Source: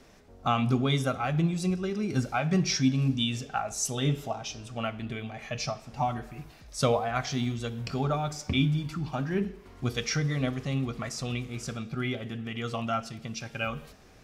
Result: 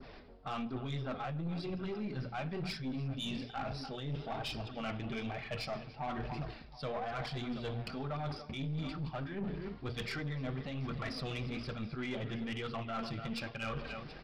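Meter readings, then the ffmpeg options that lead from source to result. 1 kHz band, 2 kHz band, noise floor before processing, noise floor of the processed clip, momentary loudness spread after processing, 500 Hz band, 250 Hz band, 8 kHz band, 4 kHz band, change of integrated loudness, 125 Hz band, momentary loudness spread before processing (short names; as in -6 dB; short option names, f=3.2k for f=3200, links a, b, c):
-9.0 dB, -7.5 dB, -53 dBFS, -52 dBFS, 3 LU, -8.5 dB, -9.5 dB, -22.5 dB, -9.0 dB, -9.5 dB, -10.0 dB, 10 LU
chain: -af "adynamicequalizer=threshold=0.00708:dfrequency=3000:dqfactor=0.71:tfrequency=3000:tqfactor=0.71:attack=5:release=100:ratio=0.375:range=2:mode=cutabove:tftype=bell,aresample=11025,aresample=44100,bandreject=f=60:t=h:w=6,bandreject=f=120:t=h:w=6,bandreject=f=180:t=h:w=6,bandreject=f=240:t=h:w=6,aecho=1:1:292|729:0.133|0.106,flanger=delay=0.6:depth=6.3:regen=-26:speed=1.1:shape=triangular,areverse,acompressor=threshold=-42dB:ratio=10,areverse,aeval=exprs='(tanh(126*val(0)+0.35)-tanh(0.35))/126':c=same,volume=9.5dB"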